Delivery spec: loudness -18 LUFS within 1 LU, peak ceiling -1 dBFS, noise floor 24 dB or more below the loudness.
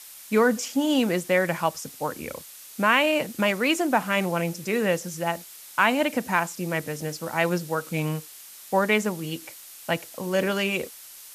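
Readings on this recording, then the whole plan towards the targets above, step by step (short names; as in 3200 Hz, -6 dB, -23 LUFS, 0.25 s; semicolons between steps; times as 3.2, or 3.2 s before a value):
noise floor -45 dBFS; noise floor target -49 dBFS; loudness -25.0 LUFS; peak -6.0 dBFS; loudness target -18.0 LUFS
-> noise print and reduce 6 dB; gain +7 dB; limiter -1 dBFS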